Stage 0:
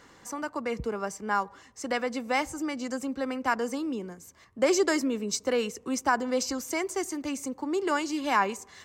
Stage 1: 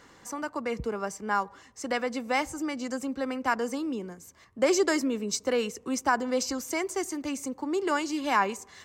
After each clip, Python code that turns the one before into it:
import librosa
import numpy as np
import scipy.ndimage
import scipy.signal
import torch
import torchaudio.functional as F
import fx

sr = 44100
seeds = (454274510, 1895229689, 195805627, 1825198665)

y = x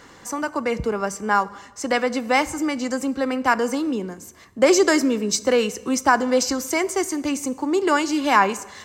y = fx.rev_plate(x, sr, seeds[0], rt60_s=1.1, hf_ratio=0.9, predelay_ms=0, drr_db=16.5)
y = F.gain(torch.from_numpy(y), 8.0).numpy()